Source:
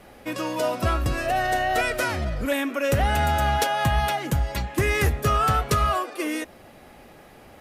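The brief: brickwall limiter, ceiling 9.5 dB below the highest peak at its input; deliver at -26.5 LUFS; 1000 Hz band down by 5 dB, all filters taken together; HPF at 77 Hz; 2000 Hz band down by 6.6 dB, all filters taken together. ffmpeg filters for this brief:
-af "highpass=77,equalizer=f=1k:t=o:g=-5.5,equalizer=f=2k:t=o:g=-6.5,volume=3.5dB,alimiter=limit=-17dB:level=0:latency=1"

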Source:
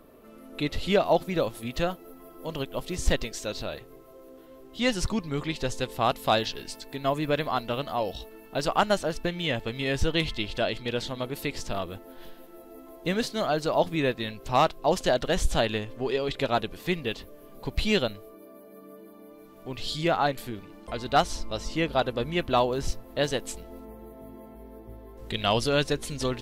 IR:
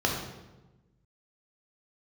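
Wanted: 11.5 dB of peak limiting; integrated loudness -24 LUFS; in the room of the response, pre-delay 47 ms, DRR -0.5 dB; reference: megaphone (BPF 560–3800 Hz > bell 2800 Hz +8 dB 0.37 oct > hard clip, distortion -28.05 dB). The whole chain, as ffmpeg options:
-filter_complex "[0:a]alimiter=limit=-22.5dB:level=0:latency=1,asplit=2[a][b];[1:a]atrim=start_sample=2205,adelay=47[c];[b][c]afir=irnorm=-1:irlink=0,volume=-11.5dB[d];[a][d]amix=inputs=2:normalize=0,highpass=560,lowpass=3.8k,equalizer=f=2.8k:t=o:w=0.37:g=8,asoftclip=type=hard:threshold=-22dB,volume=9dB"

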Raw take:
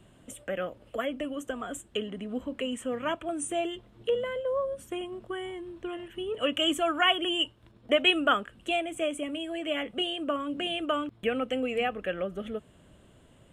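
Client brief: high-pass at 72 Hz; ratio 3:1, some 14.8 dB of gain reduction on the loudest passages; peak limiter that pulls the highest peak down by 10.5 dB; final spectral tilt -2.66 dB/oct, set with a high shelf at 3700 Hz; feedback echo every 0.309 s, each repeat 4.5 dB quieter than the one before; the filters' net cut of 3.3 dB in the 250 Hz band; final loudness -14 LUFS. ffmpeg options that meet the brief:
-af "highpass=72,equalizer=f=250:t=o:g=-4.5,highshelf=f=3.7k:g=5,acompressor=threshold=-38dB:ratio=3,alimiter=level_in=9.5dB:limit=-24dB:level=0:latency=1,volume=-9.5dB,aecho=1:1:309|618|927|1236|1545|1854|2163|2472|2781:0.596|0.357|0.214|0.129|0.0772|0.0463|0.0278|0.0167|0.01,volume=27dB"

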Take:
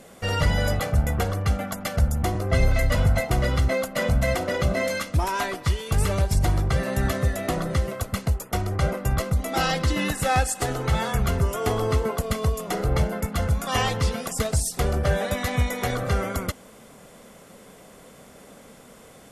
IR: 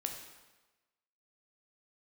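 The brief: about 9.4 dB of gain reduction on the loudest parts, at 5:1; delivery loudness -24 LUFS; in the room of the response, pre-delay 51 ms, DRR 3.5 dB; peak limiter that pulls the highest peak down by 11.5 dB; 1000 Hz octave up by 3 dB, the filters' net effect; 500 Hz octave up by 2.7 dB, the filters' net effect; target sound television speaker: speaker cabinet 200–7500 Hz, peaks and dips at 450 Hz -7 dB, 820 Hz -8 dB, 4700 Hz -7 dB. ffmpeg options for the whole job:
-filter_complex "[0:a]equalizer=f=500:t=o:g=5.5,equalizer=f=1k:t=o:g=7,acompressor=threshold=-25dB:ratio=5,alimiter=limit=-24dB:level=0:latency=1,asplit=2[a][b];[1:a]atrim=start_sample=2205,adelay=51[c];[b][c]afir=irnorm=-1:irlink=0,volume=-4dB[d];[a][d]amix=inputs=2:normalize=0,highpass=f=200:w=0.5412,highpass=f=200:w=1.3066,equalizer=f=450:t=q:w=4:g=-7,equalizer=f=820:t=q:w=4:g=-8,equalizer=f=4.7k:t=q:w=4:g=-7,lowpass=f=7.5k:w=0.5412,lowpass=f=7.5k:w=1.3066,volume=12dB"

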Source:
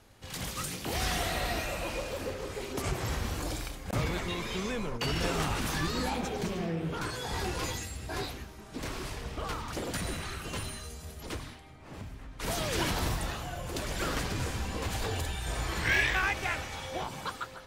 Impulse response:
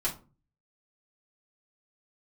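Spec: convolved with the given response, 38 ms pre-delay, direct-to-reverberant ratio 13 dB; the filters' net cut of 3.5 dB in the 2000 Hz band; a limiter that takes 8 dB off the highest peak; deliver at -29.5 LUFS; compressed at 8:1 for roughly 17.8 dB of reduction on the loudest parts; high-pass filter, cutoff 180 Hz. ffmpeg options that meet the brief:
-filter_complex "[0:a]highpass=180,equalizer=f=2k:t=o:g=-4.5,acompressor=threshold=-45dB:ratio=8,alimiter=level_in=16dB:limit=-24dB:level=0:latency=1,volume=-16dB,asplit=2[a][b];[1:a]atrim=start_sample=2205,adelay=38[c];[b][c]afir=irnorm=-1:irlink=0,volume=-19dB[d];[a][d]amix=inputs=2:normalize=0,volume=19.5dB"

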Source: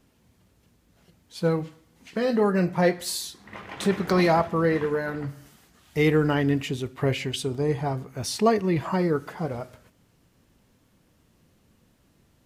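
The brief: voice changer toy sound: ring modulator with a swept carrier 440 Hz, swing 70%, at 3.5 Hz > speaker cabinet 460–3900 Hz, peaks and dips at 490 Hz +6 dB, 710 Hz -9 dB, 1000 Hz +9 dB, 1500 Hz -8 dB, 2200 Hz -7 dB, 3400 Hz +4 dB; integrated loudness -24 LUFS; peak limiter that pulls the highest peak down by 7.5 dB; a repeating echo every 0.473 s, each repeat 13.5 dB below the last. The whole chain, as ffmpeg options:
-af "alimiter=limit=-16dB:level=0:latency=1,aecho=1:1:473|946:0.211|0.0444,aeval=exprs='val(0)*sin(2*PI*440*n/s+440*0.7/3.5*sin(2*PI*3.5*n/s))':c=same,highpass=460,equalizer=f=490:t=q:w=4:g=6,equalizer=f=710:t=q:w=4:g=-9,equalizer=f=1k:t=q:w=4:g=9,equalizer=f=1.5k:t=q:w=4:g=-8,equalizer=f=2.2k:t=q:w=4:g=-7,equalizer=f=3.4k:t=q:w=4:g=4,lowpass=f=3.9k:w=0.5412,lowpass=f=3.9k:w=1.3066,volume=7.5dB"

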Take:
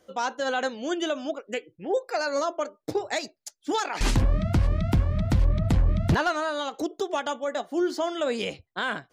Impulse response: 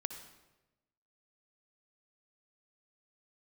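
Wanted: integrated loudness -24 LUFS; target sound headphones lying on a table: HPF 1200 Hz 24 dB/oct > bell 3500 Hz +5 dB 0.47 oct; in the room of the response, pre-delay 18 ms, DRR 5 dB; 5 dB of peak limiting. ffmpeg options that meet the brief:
-filter_complex "[0:a]alimiter=limit=-18.5dB:level=0:latency=1,asplit=2[a][b];[1:a]atrim=start_sample=2205,adelay=18[c];[b][c]afir=irnorm=-1:irlink=0,volume=-4.5dB[d];[a][d]amix=inputs=2:normalize=0,highpass=f=1.2k:w=0.5412,highpass=f=1.2k:w=1.3066,equalizer=f=3.5k:t=o:w=0.47:g=5,volume=10dB"

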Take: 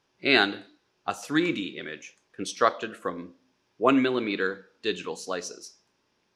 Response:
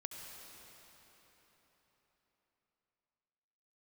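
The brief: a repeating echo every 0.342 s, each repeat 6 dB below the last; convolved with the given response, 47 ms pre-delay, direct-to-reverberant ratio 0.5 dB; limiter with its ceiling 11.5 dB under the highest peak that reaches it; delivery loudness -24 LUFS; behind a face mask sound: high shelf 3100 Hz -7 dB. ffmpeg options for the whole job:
-filter_complex "[0:a]alimiter=limit=-15dB:level=0:latency=1,aecho=1:1:342|684|1026|1368|1710|2052:0.501|0.251|0.125|0.0626|0.0313|0.0157,asplit=2[a][b];[1:a]atrim=start_sample=2205,adelay=47[c];[b][c]afir=irnorm=-1:irlink=0,volume=1.5dB[d];[a][d]amix=inputs=2:normalize=0,highshelf=f=3.1k:g=-7,volume=4dB"

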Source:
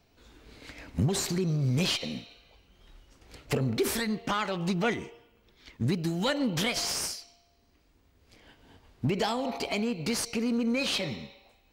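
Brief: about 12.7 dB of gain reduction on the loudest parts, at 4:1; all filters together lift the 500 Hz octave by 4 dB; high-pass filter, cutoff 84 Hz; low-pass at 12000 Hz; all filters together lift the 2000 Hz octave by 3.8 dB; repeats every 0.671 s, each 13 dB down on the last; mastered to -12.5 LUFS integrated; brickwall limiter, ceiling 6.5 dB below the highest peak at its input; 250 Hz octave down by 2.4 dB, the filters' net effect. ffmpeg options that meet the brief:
-af "highpass=84,lowpass=12k,equalizer=f=250:t=o:g=-4.5,equalizer=f=500:t=o:g=6,equalizer=f=2k:t=o:g=4.5,acompressor=threshold=-36dB:ratio=4,alimiter=level_in=6dB:limit=-24dB:level=0:latency=1,volume=-6dB,aecho=1:1:671|1342|2013:0.224|0.0493|0.0108,volume=27.5dB"

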